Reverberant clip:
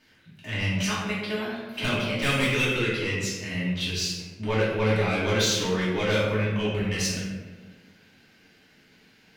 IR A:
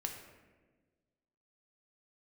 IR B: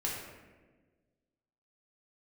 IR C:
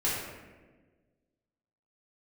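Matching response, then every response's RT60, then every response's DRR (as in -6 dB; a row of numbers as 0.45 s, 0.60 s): C; 1.4 s, 1.4 s, 1.4 s; 2.0 dB, -5.5 dB, -9.5 dB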